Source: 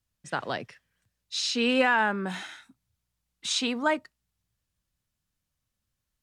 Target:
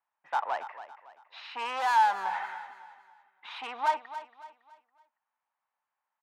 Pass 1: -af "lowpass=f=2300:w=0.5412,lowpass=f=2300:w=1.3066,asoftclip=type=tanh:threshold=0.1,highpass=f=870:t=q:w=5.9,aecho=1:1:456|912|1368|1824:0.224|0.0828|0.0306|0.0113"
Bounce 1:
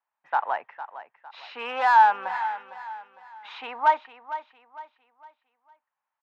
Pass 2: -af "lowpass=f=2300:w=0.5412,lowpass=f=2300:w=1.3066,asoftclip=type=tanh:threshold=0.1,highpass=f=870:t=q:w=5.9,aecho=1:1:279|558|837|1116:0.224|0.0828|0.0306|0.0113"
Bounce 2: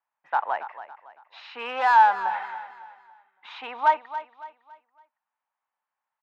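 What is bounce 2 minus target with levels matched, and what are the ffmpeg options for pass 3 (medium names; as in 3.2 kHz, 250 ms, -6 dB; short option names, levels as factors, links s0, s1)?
saturation: distortion -9 dB
-af "lowpass=f=2300:w=0.5412,lowpass=f=2300:w=1.3066,asoftclip=type=tanh:threshold=0.0282,highpass=f=870:t=q:w=5.9,aecho=1:1:279|558|837|1116:0.224|0.0828|0.0306|0.0113"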